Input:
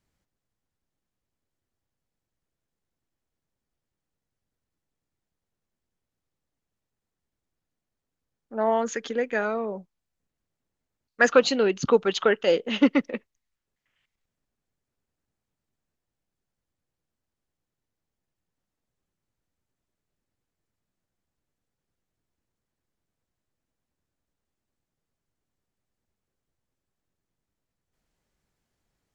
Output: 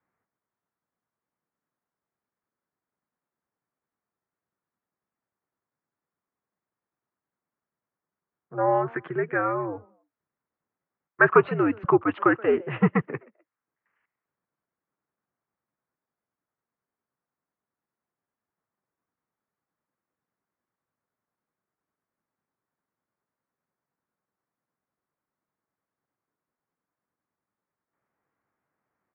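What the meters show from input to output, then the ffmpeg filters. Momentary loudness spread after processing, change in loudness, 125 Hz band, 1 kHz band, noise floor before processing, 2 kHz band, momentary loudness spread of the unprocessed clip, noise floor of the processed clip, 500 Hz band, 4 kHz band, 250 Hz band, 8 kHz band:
16 LU, 0.0 dB, +10.5 dB, +3.5 dB, under -85 dBFS, +1.5 dB, 15 LU, under -85 dBFS, -1.5 dB, under -15 dB, 0.0 dB, n/a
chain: -filter_complex "[0:a]equalizer=f=1.2k:t=o:w=0.9:g=7,asplit=3[a][b][c];[b]adelay=127,afreqshift=100,volume=-24dB[d];[c]adelay=254,afreqshift=200,volume=-33.6dB[e];[a][d][e]amix=inputs=3:normalize=0,highpass=f=230:t=q:w=0.5412,highpass=f=230:t=q:w=1.307,lowpass=f=2.3k:t=q:w=0.5176,lowpass=f=2.3k:t=q:w=0.7071,lowpass=f=2.3k:t=q:w=1.932,afreqshift=-91,volume=-1dB"

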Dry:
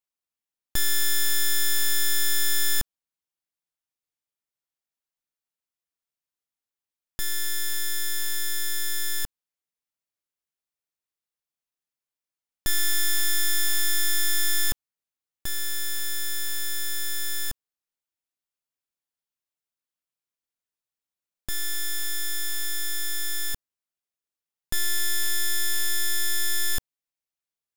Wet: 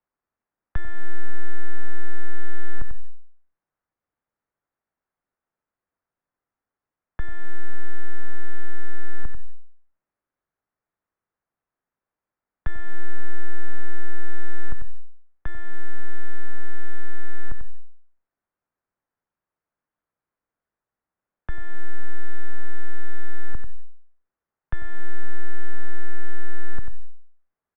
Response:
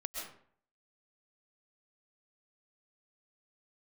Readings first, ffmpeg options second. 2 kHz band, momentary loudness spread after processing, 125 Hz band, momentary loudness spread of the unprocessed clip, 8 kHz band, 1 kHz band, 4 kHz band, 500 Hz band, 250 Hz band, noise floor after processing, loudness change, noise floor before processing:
-5.0 dB, 4 LU, +12.5 dB, 9 LU, under -40 dB, +0.5 dB, -30.0 dB, +1.5 dB, +2.0 dB, under -85 dBFS, -13.5 dB, under -85 dBFS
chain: -filter_complex "[0:a]aecho=1:1:93:0.316,acrossover=split=100|330|1300[a][b][c][d];[a]acompressor=threshold=-28dB:ratio=4[e];[b]acompressor=threshold=-60dB:ratio=4[f];[c]acompressor=threshold=-58dB:ratio=4[g];[d]acompressor=threshold=-39dB:ratio=4[h];[e][f][g][h]amix=inputs=4:normalize=0,lowpass=f=1.7k:w=0.5412,lowpass=f=1.7k:w=1.3066,asplit=2[i][j];[1:a]atrim=start_sample=2205[k];[j][k]afir=irnorm=-1:irlink=0,volume=-13.5dB[l];[i][l]amix=inputs=2:normalize=0,volume=10dB"

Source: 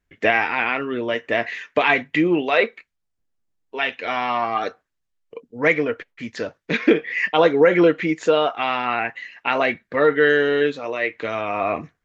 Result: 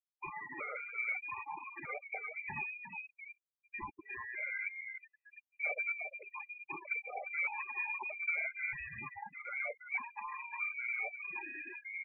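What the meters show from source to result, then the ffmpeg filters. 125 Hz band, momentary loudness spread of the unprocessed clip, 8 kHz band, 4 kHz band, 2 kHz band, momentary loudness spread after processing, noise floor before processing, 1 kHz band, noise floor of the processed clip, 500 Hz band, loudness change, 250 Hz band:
-26.0 dB, 10 LU, n/a, under -40 dB, -14.5 dB, 10 LU, -76 dBFS, -21.0 dB, under -85 dBFS, -33.0 dB, -19.0 dB, -36.0 dB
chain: -filter_complex "[0:a]asplit=2[a][b];[b]acrusher=samples=40:mix=1:aa=0.000001:lfo=1:lforange=40:lforate=1.7,volume=-5dB[c];[a][c]amix=inputs=2:normalize=0,asoftclip=type=tanh:threshold=-16dB,highpass=f=440:w=0.5412,highpass=f=440:w=1.3066,acompressor=threshold=-32dB:ratio=2.5,asplit=8[d][e][f][g][h][i][j][k];[e]adelay=353,afreqshift=-40,volume=-5.5dB[l];[f]adelay=706,afreqshift=-80,volume=-10.5dB[m];[g]adelay=1059,afreqshift=-120,volume=-15.6dB[n];[h]adelay=1412,afreqshift=-160,volume=-20.6dB[o];[i]adelay=1765,afreqshift=-200,volume=-25.6dB[p];[j]adelay=2118,afreqshift=-240,volume=-30.7dB[q];[k]adelay=2471,afreqshift=-280,volume=-35.7dB[r];[d][l][m][n][o][p][q][r]amix=inputs=8:normalize=0,afftfilt=real='re*gte(hypot(re,im),0.0562)':imag='im*gte(hypot(re,im),0.0562)':win_size=1024:overlap=0.75,equalizer=f=1.1k:t=o:w=1.7:g=-10,lowpass=f=2.4k:t=q:w=0.5098,lowpass=f=2.4k:t=q:w=0.6013,lowpass=f=2.4k:t=q:w=0.9,lowpass=f=2.4k:t=q:w=2.563,afreqshift=-2800,afftfilt=real='re*gt(sin(2*PI*0.8*pts/sr)*(1-2*mod(floor(b*sr/1024/400),2)),0)':imag='im*gt(sin(2*PI*0.8*pts/sr)*(1-2*mod(floor(b*sr/1024/400),2)),0)':win_size=1024:overlap=0.75"

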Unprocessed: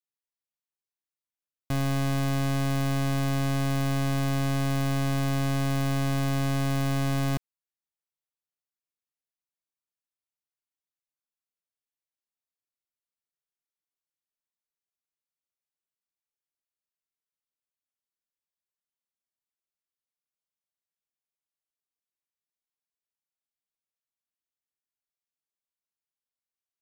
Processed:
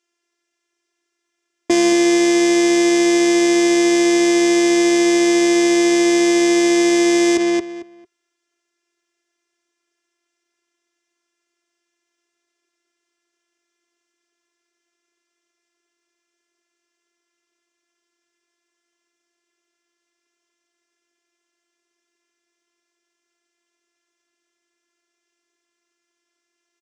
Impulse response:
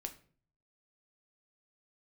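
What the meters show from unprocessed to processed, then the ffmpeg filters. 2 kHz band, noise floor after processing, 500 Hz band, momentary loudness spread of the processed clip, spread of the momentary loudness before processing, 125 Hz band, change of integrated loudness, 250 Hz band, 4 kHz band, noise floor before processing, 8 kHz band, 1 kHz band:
+14.5 dB, -77 dBFS, +19.5 dB, 1 LU, 0 LU, under -15 dB, +12.5 dB, +15.5 dB, +15.0 dB, under -85 dBFS, +18.5 dB, +8.5 dB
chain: -filter_complex "[0:a]afftfilt=real='hypot(re,im)*cos(PI*b)':imag='0':win_size=512:overlap=0.75,aeval=exprs='0.133*(cos(1*acos(clip(val(0)/0.133,-1,1)))-cos(1*PI/2))+0.0531*(cos(3*acos(clip(val(0)/0.133,-1,1)))-cos(3*PI/2))+0.0266*(cos(5*acos(clip(val(0)/0.133,-1,1)))-cos(5*PI/2))':c=same,highpass=180,equalizer=f=190:t=q:w=4:g=-6,equalizer=f=380:t=q:w=4:g=9,equalizer=f=850:t=q:w=4:g=-7,equalizer=f=4k:t=q:w=4:g=-10,lowpass=f=6.7k:w=0.5412,lowpass=f=6.7k:w=1.3066,asplit=2[a][b];[b]adelay=224,lowpass=f=3.5k:p=1,volume=-9dB,asplit=2[c][d];[d]adelay=224,lowpass=f=3.5k:p=1,volume=0.21,asplit=2[e][f];[f]adelay=224,lowpass=f=3.5k:p=1,volume=0.21[g];[c][e][g]amix=inputs=3:normalize=0[h];[a][h]amix=inputs=2:normalize=0,alimiter=level_in=33dB:limit=-1dB:release=50:level=0:latency=1,volume=-3.5dB"

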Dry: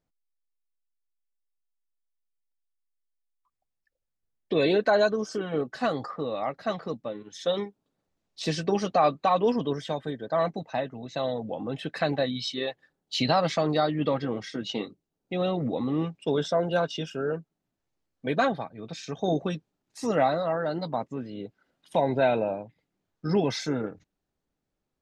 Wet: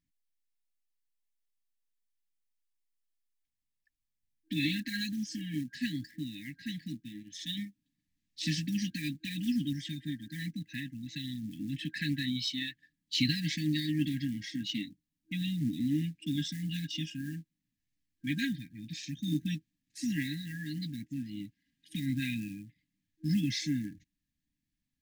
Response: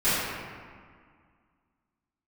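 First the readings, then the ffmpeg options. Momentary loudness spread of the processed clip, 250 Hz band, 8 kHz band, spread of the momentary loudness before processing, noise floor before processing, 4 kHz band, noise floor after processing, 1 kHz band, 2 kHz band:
11 LU, -2.0 dB, -0.5 dB, 12 LU, -83 dBFS, -1.5 dB, under -85 dBFS, under -40 dB, -5.0 dB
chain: -af "acrusher=bits=7:mode=log:mix=0:aa=0.000001,afftfilt=real='re*(1-between(b*sr/4096,320,1600))':imag='im*(1-between(b*sr/4096,320,1600))':win_size=4096:overlap=0.75,volume=-1.5dB"

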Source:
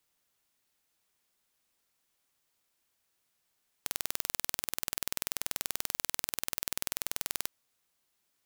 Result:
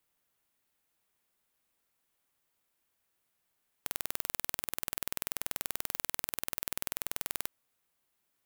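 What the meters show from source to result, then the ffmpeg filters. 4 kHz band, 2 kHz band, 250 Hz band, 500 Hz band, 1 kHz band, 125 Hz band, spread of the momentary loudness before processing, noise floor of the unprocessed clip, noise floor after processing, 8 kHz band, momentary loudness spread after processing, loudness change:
-4.5 dB, -1.5 dB, 0.0 dB, 0.0 dB, -0.5 dB, 0.0 dB, 3 LU, -78 dBFS, -80 dBFS, -3.5 dB, 3 LU, -1.5 dB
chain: -af "equalizer=f=5.4k:w=0.82:g=-6"

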